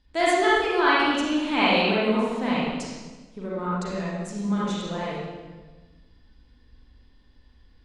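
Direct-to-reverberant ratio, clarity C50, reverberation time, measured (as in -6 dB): -8.0 dB, -4.5 dB, 1.3 s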